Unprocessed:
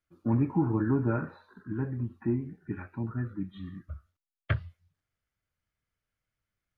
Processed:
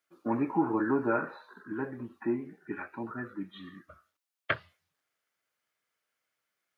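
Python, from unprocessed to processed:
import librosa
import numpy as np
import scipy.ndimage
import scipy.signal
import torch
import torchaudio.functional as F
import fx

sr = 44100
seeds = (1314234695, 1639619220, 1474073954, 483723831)

y = scipy.signal.sosfilt(scipy.signal.butter(2, 410.0, 'highpass', fs=sr, output='sos'), x)
y = y * librosa.db_to_amplitude(6.0)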